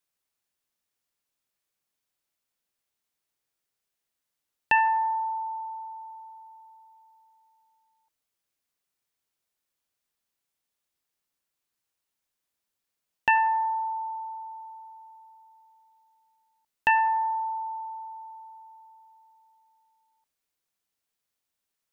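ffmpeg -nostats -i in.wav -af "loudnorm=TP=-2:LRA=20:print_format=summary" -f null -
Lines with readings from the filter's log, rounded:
Input Integrated:    -26.8 LUFS
Input True Peak:     -10.5 dBTP
Input LRA:            19.4 LU
Input Threshold:     -40.9 LUFS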